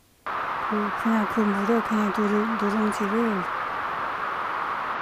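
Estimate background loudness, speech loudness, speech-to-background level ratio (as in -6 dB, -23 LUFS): -28.5 LUFS, -26.5 LUFS, 2.0 dB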